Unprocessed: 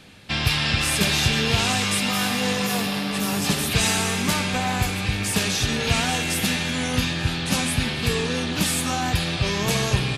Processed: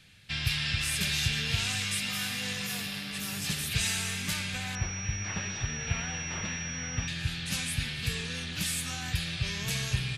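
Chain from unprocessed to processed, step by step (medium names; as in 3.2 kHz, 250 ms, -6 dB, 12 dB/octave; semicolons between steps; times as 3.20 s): high-order bell 500 Hz -11.5 dB 2.8 oct; 4.75–7.08 s: class-D stage that switches slowly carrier 5.7 kHz; trim -7.5 dB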